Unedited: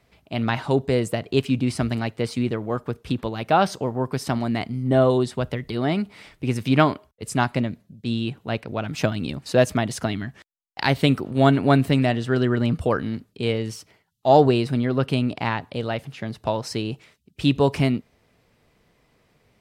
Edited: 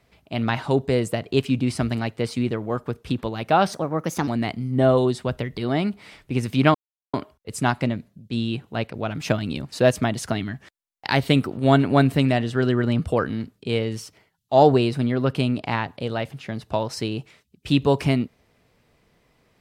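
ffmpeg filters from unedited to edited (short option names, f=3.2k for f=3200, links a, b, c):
-filter_complex "[0:a]asplit=4[a][b][c][d];[a]atrim=end=3.734[e];[b]atrim=start=3.73:end=4.4,asetpts=PTS-STARTPTS,asetrate=54243,aresample=44100[f];[c]atrim=start=4.396:end=6.87,asetpts=PTS-STARTPTS,afade=t=out:st=2.47:d=0.004:c=hsin,apad=pad_dur=0.39[g];[d]atrim=start=6.87,asetpts=PTS-STARTPTS,afade=t=in:d=0.004:c=hsin[h];[e][f]acrossfade=d=0.004:c1=hsin:c2=hsin[i];[g][h]concat=n=2:v=0:a=1[j];[i][j]acrossfade=d=0.004:c1=hsin:c2=hsin"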